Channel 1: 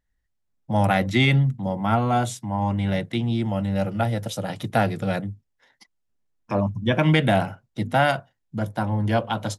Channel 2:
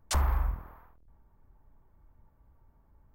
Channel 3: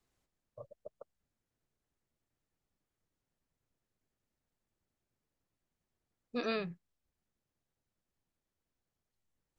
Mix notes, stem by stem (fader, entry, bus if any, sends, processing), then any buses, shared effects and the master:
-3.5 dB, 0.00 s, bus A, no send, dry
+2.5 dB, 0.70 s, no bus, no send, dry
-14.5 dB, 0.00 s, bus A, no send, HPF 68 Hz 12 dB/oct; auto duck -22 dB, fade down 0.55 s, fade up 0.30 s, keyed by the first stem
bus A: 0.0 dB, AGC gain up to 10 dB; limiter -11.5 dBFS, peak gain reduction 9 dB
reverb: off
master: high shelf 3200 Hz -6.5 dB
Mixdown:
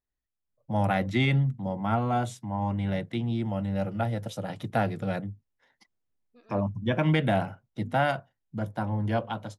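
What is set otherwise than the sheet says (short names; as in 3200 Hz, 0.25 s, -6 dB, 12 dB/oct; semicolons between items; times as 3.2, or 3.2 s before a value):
stem 1 -3.5 dB -> -15.0 dB; stem 2: muted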